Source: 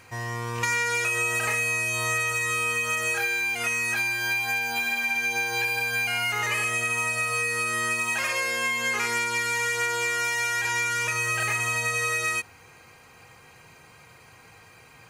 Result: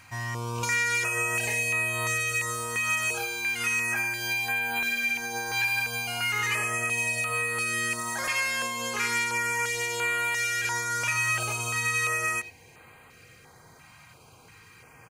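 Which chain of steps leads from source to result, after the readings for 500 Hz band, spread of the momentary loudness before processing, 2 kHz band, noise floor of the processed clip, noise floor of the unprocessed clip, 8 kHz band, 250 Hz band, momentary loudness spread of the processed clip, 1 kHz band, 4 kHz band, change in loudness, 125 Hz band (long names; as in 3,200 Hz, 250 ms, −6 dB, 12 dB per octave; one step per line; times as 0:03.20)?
−3.0 dB, 1 LU, −2.0 dB, −54 dBFS, −52 dBFS, −0.5 dB, 0.0 dB, 4 LU, −2.0 dB, −1.5 dB, −2.0 dB, 0.0 dB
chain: far-end echo of a speakerphone 90 ms, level −12 dB
notch on a step sequencer 2.9 Hz 440–5,500 Hz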